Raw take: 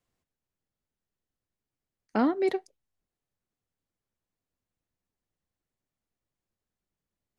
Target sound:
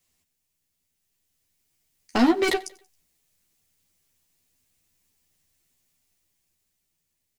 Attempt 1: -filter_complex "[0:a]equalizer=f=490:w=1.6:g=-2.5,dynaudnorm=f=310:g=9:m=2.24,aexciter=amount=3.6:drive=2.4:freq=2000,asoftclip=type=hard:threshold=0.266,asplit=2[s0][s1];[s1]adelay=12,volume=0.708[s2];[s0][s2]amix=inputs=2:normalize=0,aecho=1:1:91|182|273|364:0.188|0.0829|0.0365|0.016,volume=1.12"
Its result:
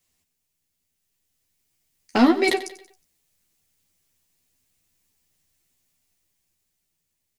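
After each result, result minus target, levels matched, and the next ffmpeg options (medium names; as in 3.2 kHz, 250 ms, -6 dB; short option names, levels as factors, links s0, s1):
echo-to-direct +8.5 dB; hard clipper: distortion -8 dB
-filter_complex "[0:a]equalizer=f=490:w=1.6:g=-2.5,dynaudnorm=f=310:g=9:m=2.24,aexciter=amount=3.6:drive=2.4:freq=2000,asoftclip=type=hard:threshold=0.266,asplit=2[s0][s1];[s1]adelay=12,volume=0.708[s2];[s0][s2]amix=inputs=2:normalize=0,aecho=1:1:91|182|273:0.0708|0.0311|0.0137,volume=1.12"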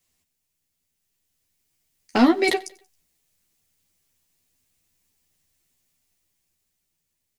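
hard clipper: distortion -8 dB
-filter_complex "[0:a]equalizer=f=490:w=1.6:g=-2.5,dynaudnorm=f=310:g=9:m=2.24,aexciter=amount=3.6:drive=2.4:freq=2000,asoftclip=type=hard:threshold=0.133,asplit=2[s0][s1];[s1]adelay=12,volume=0.708[s2];[s0][s2]amix=inputs=2:normalize=0,aecho=1:1:91|182|273:0.0708|0.0311|0.0137,volume=1.12"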